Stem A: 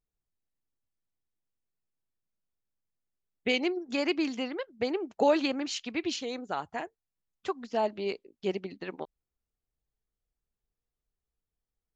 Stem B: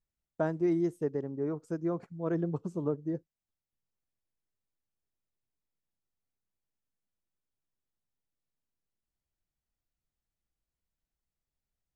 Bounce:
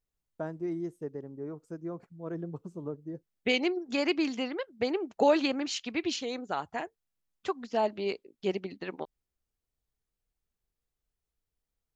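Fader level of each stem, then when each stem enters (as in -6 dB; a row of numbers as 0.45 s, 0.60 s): +0.5 dB, -6.0 dB; 0.00 s, 0.00 s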